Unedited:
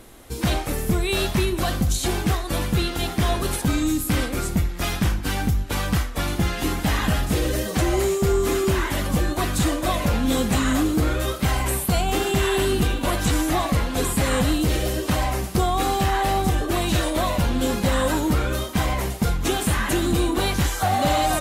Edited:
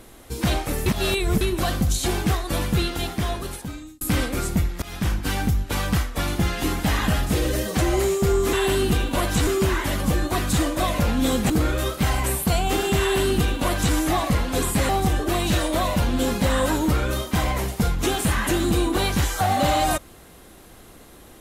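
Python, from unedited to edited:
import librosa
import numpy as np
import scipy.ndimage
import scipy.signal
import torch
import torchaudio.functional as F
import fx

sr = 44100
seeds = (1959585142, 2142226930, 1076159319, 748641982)

y = fx.edit(x, sr, fx.reverse_span(start_s=0.86, length_s=0.55),
    fx.fade_out_span(start_s=2.81, length_s=1.2),
    fx.fade_in_from(start_s=4.82, length_s=0.32, floor_db=-21.5),
    fx.cut(start_s=10.56, length_s=0.36),
    fx.duplicate(start_s=12.43, length_s=0.94, to_s=8.53),
    fx.cut(start_s=14.31, length_s=2.0), tone=tone)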